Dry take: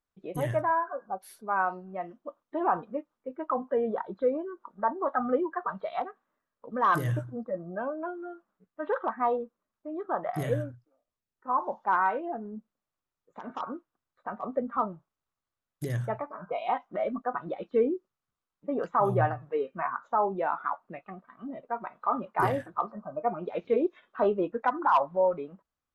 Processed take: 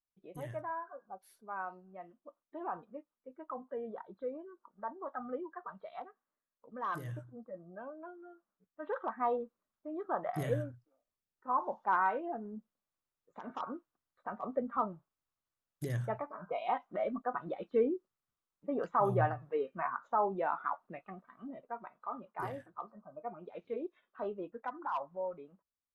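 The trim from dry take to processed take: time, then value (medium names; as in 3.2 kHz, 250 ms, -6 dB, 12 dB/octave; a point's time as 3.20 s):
8.31 s -13 dB
9.38 s -4.5 dB
21.29 s -4.5 dB
22.16 s -13.5 dB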